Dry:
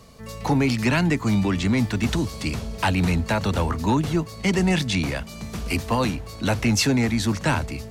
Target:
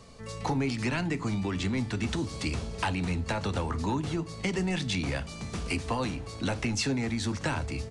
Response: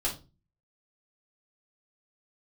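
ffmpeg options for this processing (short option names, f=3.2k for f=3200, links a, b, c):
-filter_complex "[0:a]acompressor=threshold=-24dB:ratio=6,asplit=2[a][b];[1:a]atrim=start_sample=2205[c];[b][c]afir=irnorm=-1:irlink=0,volume=-16dB[d];[a][d]amix=inputs=2:normalize=0,aresample=22050,aresample=44100,volume=-3.5dB"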